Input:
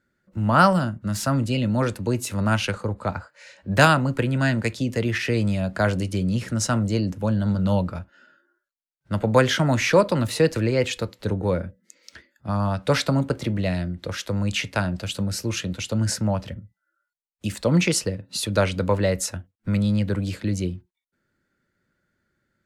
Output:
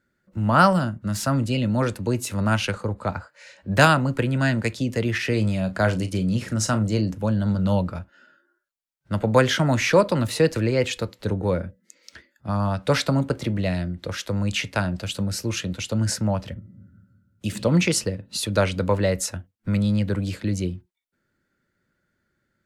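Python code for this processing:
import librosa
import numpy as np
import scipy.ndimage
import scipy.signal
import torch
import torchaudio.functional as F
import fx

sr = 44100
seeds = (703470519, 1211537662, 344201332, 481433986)

y = fx.doubler(x, sr, ms=37.0, db=-12.5, at=(5.27, 7.15))
y = fx.reverb_throw(y, sr, start_s=16.58, length_s=0.88, rt60_s=1.8, drr_db=0.0)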